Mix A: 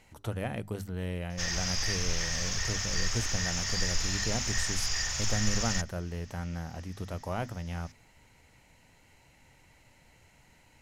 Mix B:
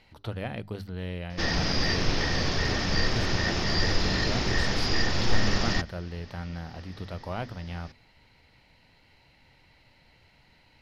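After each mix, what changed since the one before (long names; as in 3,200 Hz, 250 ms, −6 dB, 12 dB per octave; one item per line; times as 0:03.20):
background: remove guitar amp tone stack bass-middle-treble 10-0-10
master: add high shelf with overshoot 5,600 Hz −8.5 dB, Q 3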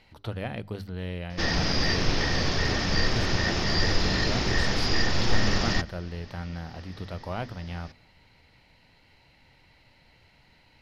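reverb: on, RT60 2.1 s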